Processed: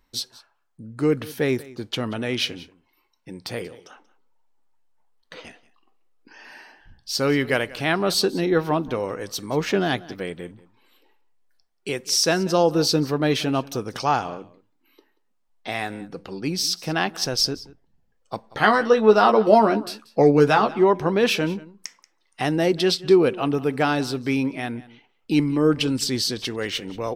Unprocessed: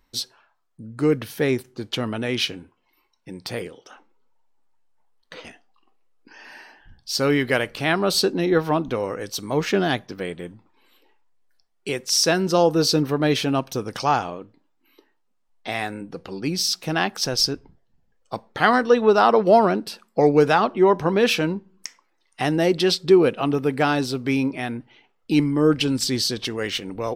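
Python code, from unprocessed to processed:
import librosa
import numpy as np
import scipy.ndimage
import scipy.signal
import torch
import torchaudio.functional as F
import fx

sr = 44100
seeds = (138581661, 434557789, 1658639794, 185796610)

y = fx.doubler(x, sr, ms=14.0, db=-5, at=(18.43, 20.79))
y = y + 10.0 ** (-20.0 / 20.0) * np.pad(y, (int(184 * sr / 1000.0), 0))[:len(y)]
y = y * 10.0 ** (-1.0 / 20.0)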